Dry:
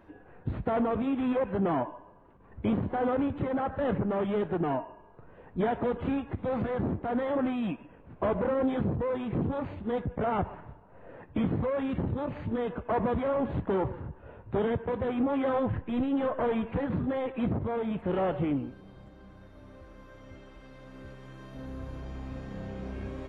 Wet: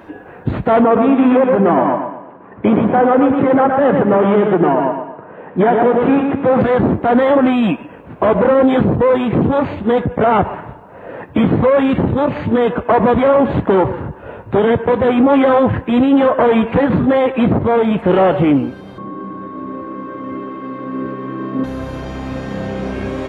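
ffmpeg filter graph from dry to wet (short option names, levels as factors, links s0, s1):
-filter_complex "[0:a]asettb=1/sr,asplit=3[s0][s1][s2];[s0]atrim=end=0.844[s3];[s1]atrim=start=0.84:end=6.61,asetpts=PTS-STARTPTS,afade=t=in:d=0.004:c=qsin,afade=t=out:st=5.766:d=0.004:c=qsin,highpass=150,lowpass=2300,aecho=1:1:119|238|357|476|595:0.531|0.207|0.0807|0.0315|0.0123,atrim=end_sample=254457[s4];[s2]atrim=start=6.606[s5];[s3][s4]acrossfade=d=0.004:c1=hsin:c2=qsin[s6];[s6][s5]acrossfade=d=0.004:c1=qsin:c2=hsin,asettb=1/sr,asplit=3[s7][s8][s9];[s7]atrim=end=18.984[s10];[s8]atrim=start=18.98:end=21.64,asetpts=PTS-STARTPTS,afade=t=in:d=0.004:c=qsin,afade=t=out:st=2.656:d=0.004:c=qsin,highpass=220,lowpass=2000,lowshelf=f=470:t=q:w=1.5:g=9.5,aeval=exprs='val(0)+0.00355*sin(2*PI*1100*n/s)':c=same[s11];[s9]atrim=start=21.636[s12];[s10][s11]acrossfade=d=0.004:c1=hsin:c2=qsin[s13];[s13][s12]acrossfade=d=0.004:c1=qsin:c2=hsin,highpass=f=190:p=1,alimiter=level_in=12.6:limit=0.891:release=50:level=0:latency=1,volume=0.708"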